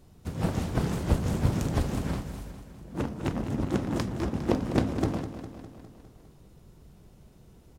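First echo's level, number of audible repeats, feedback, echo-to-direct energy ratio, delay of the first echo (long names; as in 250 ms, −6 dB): −11.0 dB, 6, 59%, −9.0 dB, 203 ms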